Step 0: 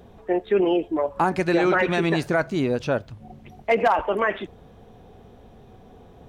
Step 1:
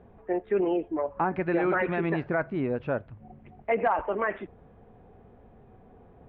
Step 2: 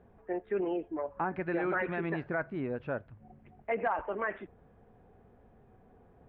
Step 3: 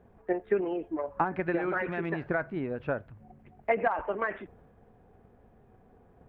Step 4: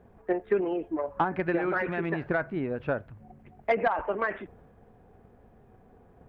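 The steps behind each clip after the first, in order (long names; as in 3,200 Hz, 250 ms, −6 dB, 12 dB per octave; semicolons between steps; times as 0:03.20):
low-pass filter 2,300 Hz 24 dB per octave; level −5.5 dB
parametric band 1,600 Hz +3.5 dB 0.49 octaves; level −6.5 dB
transient designer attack +8 dB, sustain +4 dB
soft clipping −16 dBFS, distortion −24 dB; level +2.5 dB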